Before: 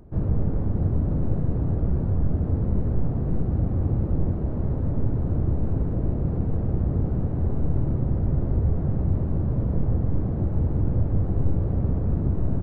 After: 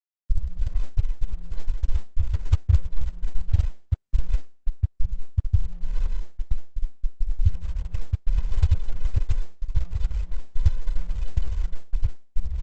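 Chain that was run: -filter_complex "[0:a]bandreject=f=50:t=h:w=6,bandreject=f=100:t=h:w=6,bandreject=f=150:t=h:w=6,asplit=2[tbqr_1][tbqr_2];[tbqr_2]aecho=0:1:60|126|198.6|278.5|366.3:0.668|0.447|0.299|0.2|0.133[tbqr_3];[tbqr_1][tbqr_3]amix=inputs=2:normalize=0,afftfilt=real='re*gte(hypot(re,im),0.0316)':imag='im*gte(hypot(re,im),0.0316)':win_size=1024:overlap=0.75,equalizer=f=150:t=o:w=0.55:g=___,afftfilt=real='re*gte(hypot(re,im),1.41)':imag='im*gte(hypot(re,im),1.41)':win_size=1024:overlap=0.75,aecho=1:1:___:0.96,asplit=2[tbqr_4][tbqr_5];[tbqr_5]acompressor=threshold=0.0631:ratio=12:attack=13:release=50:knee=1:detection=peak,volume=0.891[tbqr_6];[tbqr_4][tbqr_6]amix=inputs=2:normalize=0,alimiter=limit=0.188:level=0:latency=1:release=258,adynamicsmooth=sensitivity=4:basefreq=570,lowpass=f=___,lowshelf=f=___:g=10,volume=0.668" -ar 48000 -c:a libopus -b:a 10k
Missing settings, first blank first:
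-11.5, 1.5, 1200, 260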